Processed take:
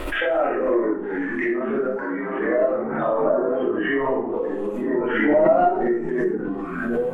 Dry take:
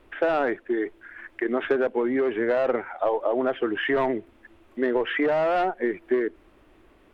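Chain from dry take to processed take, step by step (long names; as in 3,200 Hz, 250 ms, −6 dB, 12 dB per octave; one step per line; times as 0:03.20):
0:04.94–0:05.88: converter with a step at zero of −38.5 dBFS
treble cut that deepens with the level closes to 1,300 Hz, closed at −24.5 dBFS
0:01.86–0:02.49: high-pass filter 750 Hz 12 dB per octave
noise reduction from a noise print of the clip's start 8 dB
downward compressor 2.5 to 1, threshold −43 dBFS, peak gain reduction 16 dB
convolution reverb RT60 0.50 s, pre-delay 4 ms, DRR −9.5 dB
delay with pitch and tempo change per echo 238 ms, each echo −4 semitones, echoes 2, each echo −6 dB
background raised ahead of every attack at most 34 dB per second
level +7 dB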